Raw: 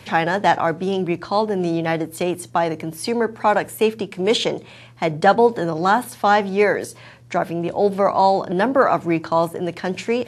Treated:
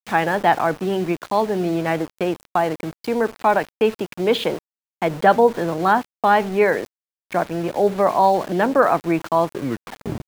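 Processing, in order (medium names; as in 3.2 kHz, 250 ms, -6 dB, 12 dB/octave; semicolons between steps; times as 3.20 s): tape stop on the ending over 0.81 s; band-pass 130–3100 Hz; small samples zeroed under -31.5 dBFS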